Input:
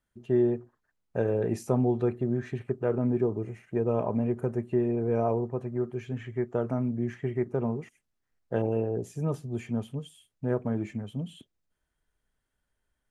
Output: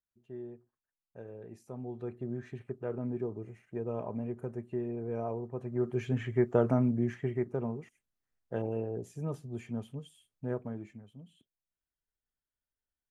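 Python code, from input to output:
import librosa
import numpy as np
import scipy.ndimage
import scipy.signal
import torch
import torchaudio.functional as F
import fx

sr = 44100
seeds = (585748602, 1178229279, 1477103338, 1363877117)

y = fx.gain(x, sr, db=fx.line((1.63, -19.5), (2.26, -9.0), (5.43, -9.0), (6.01, 3.0), (6.69, 3.0), (7.75, -6.5), (10.52, -6.5), (11.11, -17.0)))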